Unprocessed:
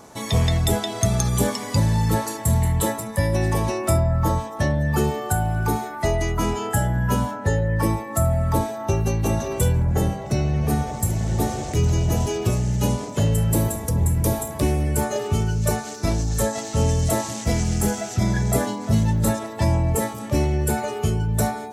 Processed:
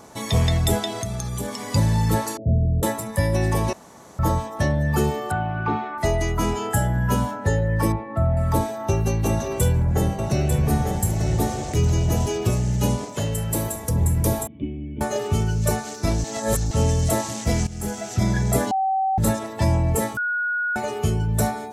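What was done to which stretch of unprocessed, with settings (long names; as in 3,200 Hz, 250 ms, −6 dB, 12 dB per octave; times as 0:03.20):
0:01.00–0:01.73: downward compressor 2.5 to 1, threshold −28 dBFS
0:02.37–0:02.83: Butterworth low-pass 690 Hz 96 dB per octave
0:03.73–0:04.19: fill with room tone
0:05.31–0:05.98: loudspeaker in its box 110–3,300 Hz, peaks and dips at 130 Hz −5 dB, 460 Hz −5 dB, 1,200 Hz +6 dB, 2,700 Hz +5 dB
0:07.92–0:08.37: high-frequency loss of the air 470 metres
0:09.29–0:11.37: single-tap delay 895 ms −5.5 dB
0:13.05–0:13.88: low-shelf EQ 380 Hz −7 dB
0:14.47–0:15.01: formant resonators in series i
0:16.24–0:16.71: reverse
0:17.67–0:18.18: fade in, from −16 dB
0:18.71–0:19.18: beep over 768 Hz −18.5 dBFS
0:20.17–0:20.76: beep over 1,450 Hz −21 dBFS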